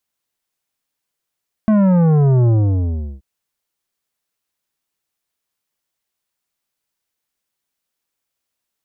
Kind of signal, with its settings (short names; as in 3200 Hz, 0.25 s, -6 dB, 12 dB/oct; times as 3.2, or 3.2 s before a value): sub drop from 220 Hz, over 1.53 s, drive 11 dB, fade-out 0.73 s, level -11 dB